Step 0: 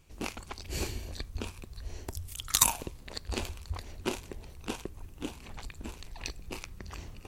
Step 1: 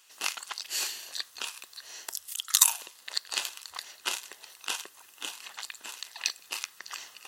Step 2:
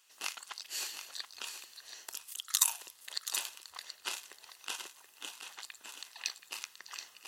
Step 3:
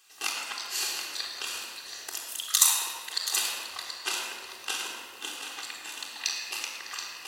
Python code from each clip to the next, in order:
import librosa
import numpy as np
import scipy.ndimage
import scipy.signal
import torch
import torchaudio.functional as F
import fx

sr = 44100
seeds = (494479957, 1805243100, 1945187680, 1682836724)

y1 = fx.notch(x, sr, hz=2300.0, q=5.5)
y1 = fx.rider(y1, sr, range_db=4, speed_s=0.5)
y1 = scipy.signal.sosfilt(scipy.signal.butter(2, 1500.0, 'highpass', fs=sr, output='sos'), y1)
y1 = y1 * 10.0 ** (7.0 / 20.0)
y2 = y1 + 10.0 ** (-9.5 / 20.0) * np.pad(y1, (int(728 * sr / 1000.0), 0))[:len(y1)]
y2 = y2 * 10.0 ** (-7.0 / 20.0)
y3 = fx.room_shoebox(y2, sr, seeds[0], volume_m3=3000.0, walls='mixed', distance_m=3.7)
y3 = y3 * 10.0 ** (4.5 / 20.0)